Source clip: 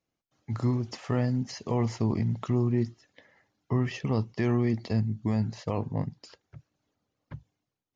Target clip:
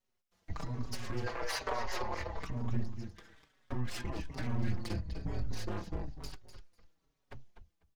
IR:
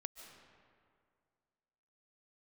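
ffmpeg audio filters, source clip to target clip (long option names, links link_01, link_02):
-filter_complex "[0:a]acompressor=threshold=-28dB:ratio=6,aecho=1:1:248|496:0.299|0.0508,afreqshift=-130,aeval=exprs='abs(val(0))':channel_layout=same,asettb=1/sr,asplit=3[link_01][link_02][link_03];[link_01]atrim=end=1.264[link_04];[link_02]atrim=start=1.26:end=2.43,asetpts=PTS-STARTPTS,afade=type=in:duration=0.004:curve=qsin,afade=type=out:start_time=1.166:duration=0.004:curve=qsin,equalizer=frequency=125:width_type=o:width=1:gain=-10,equalizer=frequency=250:width_type=o:width=1:gain=-9,equalizer=frequency=500:width_type=o:width=1:gain=9,equalizer=frequency=1000:width_type=o:width=1:gain=11,equalizer=frequency=2000:width_type=o:width=1:gain=10,equalizer=frequency=4000:width_type=o:width=1:gain=5[link_05];[link_03]atrim=start=2.426[link_06];[link_04][link_05]acrossfade=duration=0.004:curve1=hsin:curve2=qsin[link_07];[link_07][link_06]acrossfade=duration=0.004:curve1=qsin:curve2=hsin,alimiter=level_in=1dB:limit=-24dB:level=0:latency=1:release=258,volume=-1dB,asplit=2[link_08][link_09];[link_09]adelay=4.9,afreqshift=-1.1[link_10];[link_08][link_10]amix=inputs=2:normalize=1,volume=4.5dB"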